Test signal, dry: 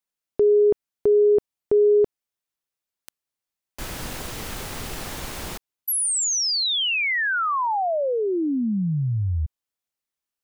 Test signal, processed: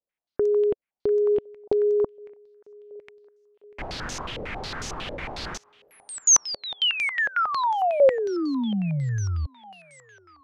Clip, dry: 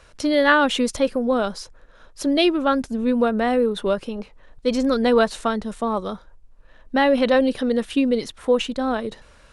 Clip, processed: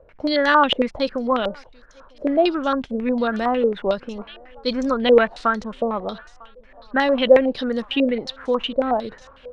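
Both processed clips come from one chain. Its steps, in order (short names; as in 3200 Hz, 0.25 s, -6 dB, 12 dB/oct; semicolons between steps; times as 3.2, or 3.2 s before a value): thinning echo 0.95 s, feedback 80%, high-pass 610 Hz, level -24 dB; dynamic EQ 430 Hz, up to -3 dB, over -30 dBFS, Q 5.2; stepped low-pass 11 Hz 550–6200 Hz; gain -2.5 dB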